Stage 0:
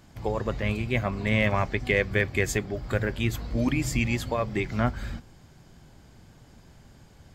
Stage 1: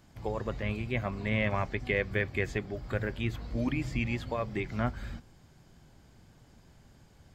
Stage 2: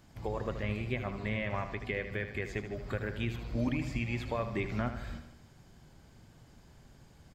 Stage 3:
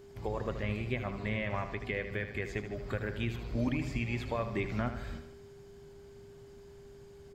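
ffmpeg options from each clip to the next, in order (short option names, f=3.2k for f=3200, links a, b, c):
-filter_complex "[0:a]acrossover=split=4300[a][b];[b]acompressor=threshold=-54dB:ratio=4:attack=1:release=60[c];[a][c]amix=inputs=2:normalize=0,volume=-5.5dB"
-af "alimiter=limit=-22.5dB:level=0:latency=1:release=345,aecho=1:1:77|154|231|308|385|462:0.316|0.177|0.0992|0.0555|0.0311|0.0174"
-af "aeval=exprs='val(0)+0.00282*sin(2*PI*400*n/s)':c=same"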